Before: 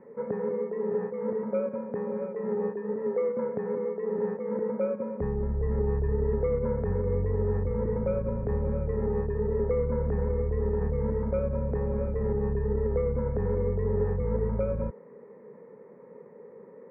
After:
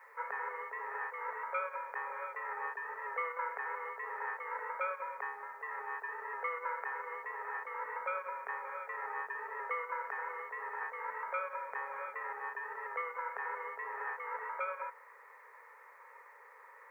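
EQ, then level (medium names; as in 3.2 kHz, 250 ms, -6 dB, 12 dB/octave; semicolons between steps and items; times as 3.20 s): high-pass 1.1 kHz 24 dB/octave; tilt EQ +1.5 dB/octave; +11.5 dB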